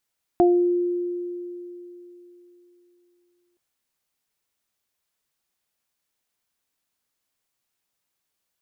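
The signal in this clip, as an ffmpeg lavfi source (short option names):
-f lavfi -i "aevalsrc='0.224*pow(10,-3*t/3.4)*sin(2*PI*352*t)+0.168*pow(10,-3*t/0.37)*sin(2*PI*704*t)':d=3.17:s=44100"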